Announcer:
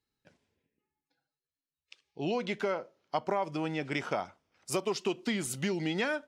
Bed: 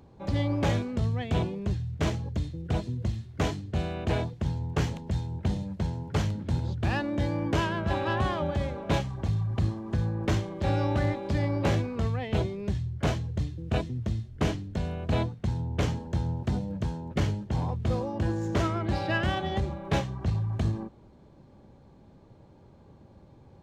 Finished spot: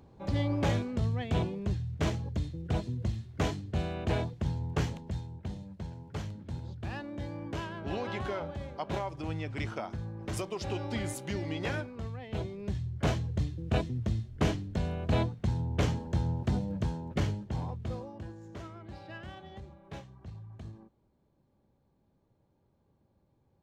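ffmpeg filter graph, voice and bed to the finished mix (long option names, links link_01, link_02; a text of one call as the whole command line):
ffmpeg -i stem1.wav -i stem2.wav -filter_complex "[0:a]adelay=5650,volume=-5.5dB[link_01];[1:a]volume=7dB,afade=type=out:start_time=4.73:duration=0.67:silence=0.398107,afade=type=in:start_time=12.23:duration=0.97:silence=0.334965,afade=type=out:start_time=16.82:duration=1.52:silence=0.149624[link_02];[link_01][link_02]amix=inputs=2:normalize=0" out.wav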